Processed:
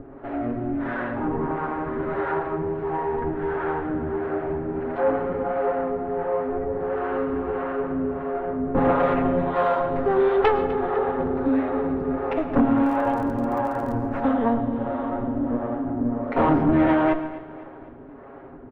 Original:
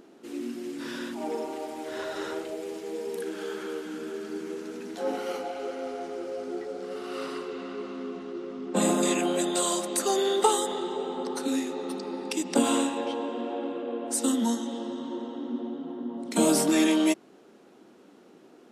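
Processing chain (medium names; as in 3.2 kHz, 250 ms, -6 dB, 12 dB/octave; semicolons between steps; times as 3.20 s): comb filter that takes the minimum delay 7.3 ms; low-pass 1.7 kHz 24 dB/octave; in parallel at +1 dB: compression, threshold -40 dBFS, peak gain reduction 20 dB; on the sum: harmonic tremolo 1.5 Hz, depth 70%, crossover 400 Hz; sine folder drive 6 dB, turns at -12.5 dBFS; 12.76–13.95 s: crackle 38 per s -34 dBFS; feedback delay 252 ms, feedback 49%, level -17 dB; on a send at -12.5 dB: reverberation RT60 0.50 s, pre-delay 98 ms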